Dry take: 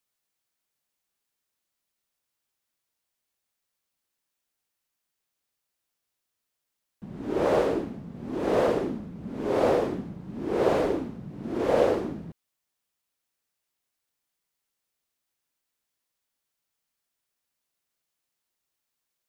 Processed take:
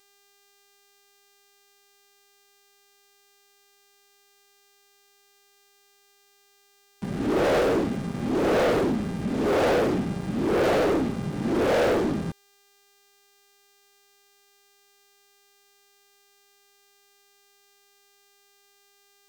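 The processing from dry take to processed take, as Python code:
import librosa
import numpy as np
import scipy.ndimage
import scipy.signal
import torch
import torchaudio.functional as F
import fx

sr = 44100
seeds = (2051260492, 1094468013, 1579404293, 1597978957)

y = fx.dmg_buzz(x, sr, base_hz=400.0, harmonics=25, level_db=-52.0, tilt_db=-6, odd_only=False)
y = fx.notch(y, sr, hz=1000.0, q=7.9)
y = fx.leveller(y, sr, passes=5)
y = y * librosa.db_to_amplitude(-8.5)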